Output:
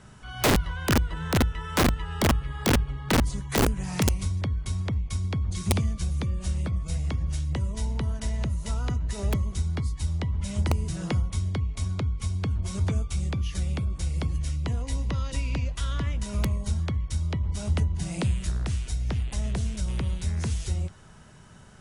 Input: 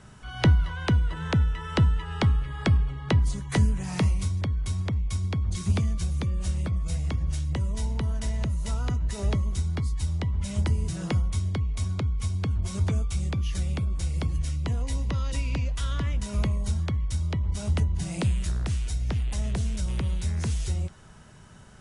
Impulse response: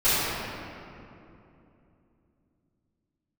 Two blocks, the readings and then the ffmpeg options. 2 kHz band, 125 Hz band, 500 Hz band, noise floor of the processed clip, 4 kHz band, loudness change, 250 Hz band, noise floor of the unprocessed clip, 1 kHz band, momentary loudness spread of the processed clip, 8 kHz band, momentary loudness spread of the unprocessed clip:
+3.5 dB, -1.5 dB, +4.0 dB, -47 dBFS, +3.0 dB, -0.5 dB, +1.5 dB, -47 dBFS, +4.0 dB, 5 LU, +3.5 dB, 4 LU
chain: -af "bandreject=f=50:t=h:w=6,bandreject=f=100:t=h:w=6,aeval=exprs='(mod(6.31*val(0)+1,2)-1)/6.31':c=same"

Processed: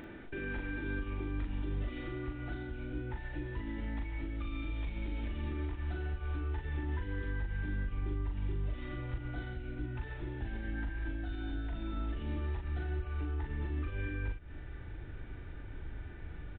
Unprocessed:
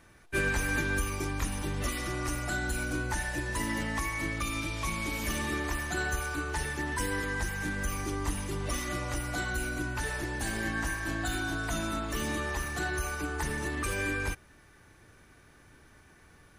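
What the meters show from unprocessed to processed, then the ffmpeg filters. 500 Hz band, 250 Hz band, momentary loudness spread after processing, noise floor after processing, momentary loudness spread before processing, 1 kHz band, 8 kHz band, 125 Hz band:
-8.5 dB, -6.0 dB, 9 LU, -46 dBFS, 3 LU, -14.0 dB, under -40 dB, -1.5 dB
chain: -filter_complex "[0:a]asuperstop=centerf=1100:order=4:qfactor=7.9,acompressor=threshold=-40dB:ratio=6,asubboost=boost=9:cutoff=81,acompressor=mode=upward:threshold=-48dB:ratio=2.5,equalizer=f=300:w=1.1:g=11.5,alimiter=level_in=8dB:limit=-24dB:level=0:latency=1:release=165,volume=-8dB,aresample=8000,aresample=44100,asplit=2[a][b];[b]adelay=40,volume=-4dB[c];[a][c]amix=inputs=2:normalize=0,volume=1dB"

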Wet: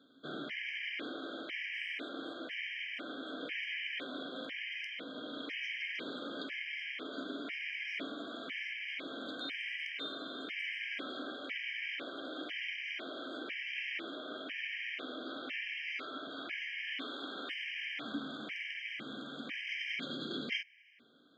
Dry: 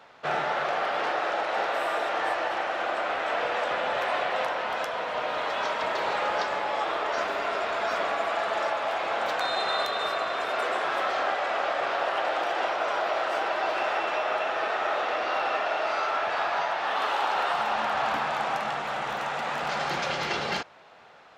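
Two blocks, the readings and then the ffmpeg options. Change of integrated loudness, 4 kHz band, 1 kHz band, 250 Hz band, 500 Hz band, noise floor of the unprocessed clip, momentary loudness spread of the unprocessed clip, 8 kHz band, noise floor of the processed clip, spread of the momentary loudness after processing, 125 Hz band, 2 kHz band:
-12.0 dB, -6.5 dB, -25.0 dB, -1.5 dB, -19.0 dB, -32 dBFS, 3 LU, under -15 dB, -47 dBFS, 5 LU, n/a, -8.5 dB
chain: -filter_complex "[0:a]asplit=3[a][b][c];[a]bandpass=f=270:t=q:w=8,volume=0dB[d];[b]bandpass=f=2.29k:t=q:w=8,volume=-6dB[e];[c]bandpass=f=3.01k:t=q:w=8,volume=-9dB[f];[d][e][f]amix=inputs=3:normalize=0,afftfilt=real='re*gt(sin(2*PI*1*pts/sr)*(1-2*mod(floor(b*sr/1024/1600),2)),0)':imag='im*gt(sin(2*PI*1*pts/sr)*(1-2*mod(floor(b*sr/1024/1600),2)),0)':win_size=1024:overlap=0.75,volume=9dB"

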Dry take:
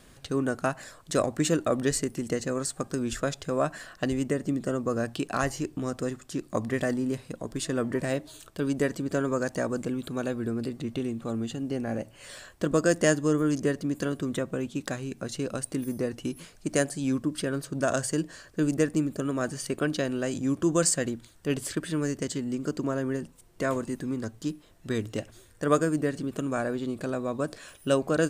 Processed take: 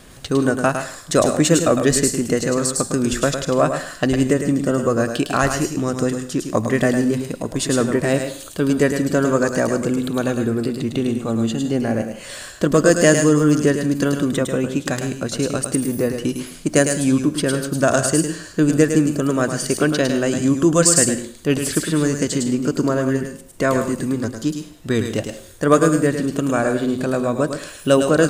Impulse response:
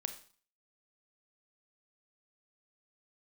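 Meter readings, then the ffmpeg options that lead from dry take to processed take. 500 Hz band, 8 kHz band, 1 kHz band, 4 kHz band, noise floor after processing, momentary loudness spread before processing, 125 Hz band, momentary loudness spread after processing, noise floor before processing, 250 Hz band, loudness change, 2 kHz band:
+10.0 dB, +12.5 dB, +10.0 dB, +11.0 dB, -39 dBFS, 9 LU, +10.5 dB, 9 LU, -55 dBFS, +10.5 dB, +10.5 dB, +10.0 dB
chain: -filter_complex "[0:a]acontrast=90,asplit=2[a][b];[b]highshelf=f=5k:g=9.5[c];[1:a]atrim=start_sample=2205,asetrate=39249,aresample=44100,adelay=106[d];[c][d]afir=irnorm=-1:irlink=0,volume=-7.5dB[e];[a][e]amix=inputs=2:normalize=0,volume=2.5dB"

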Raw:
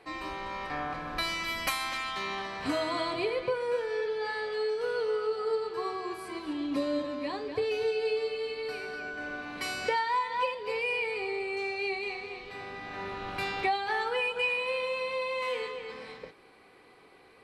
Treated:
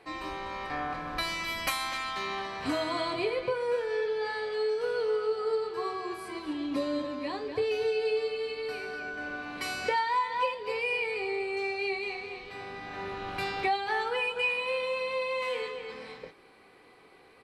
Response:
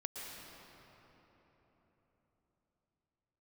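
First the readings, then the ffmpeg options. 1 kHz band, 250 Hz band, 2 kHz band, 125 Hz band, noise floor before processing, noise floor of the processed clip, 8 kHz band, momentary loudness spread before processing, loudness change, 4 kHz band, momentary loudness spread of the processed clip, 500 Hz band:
+0.5 dB, 0.0 dB, 0.0 dB, +0.5 dB, -57 dBFS, -57 dBFS, +0.5 dB, 9 LU, +0.5 dB, 0.0 dB, 9 LU, +1.0 dB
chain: -filter_complex "[0:a]asplit=2[a][b];[b]adelay=23,volume=-13dB[c];[a][c]amix=inputs=2:normalize=0"

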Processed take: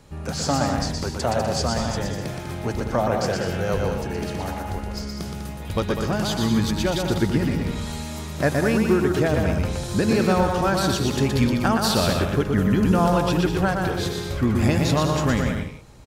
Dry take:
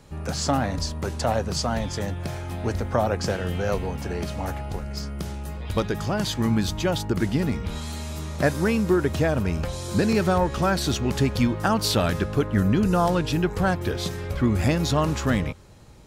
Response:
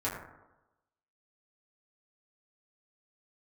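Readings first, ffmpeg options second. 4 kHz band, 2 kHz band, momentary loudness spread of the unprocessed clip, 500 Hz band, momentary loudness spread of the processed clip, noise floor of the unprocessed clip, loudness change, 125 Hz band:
+2.0 dB, +2.0 dB, 10 LU, +2.0 dB, 11 LU, -33 dBFS, +2.0 dB, +1.5 dB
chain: -af "aecho=1:1:120|198|248.7|281.7|303.1:0.631|0.398|0.251|0.158|0.1"

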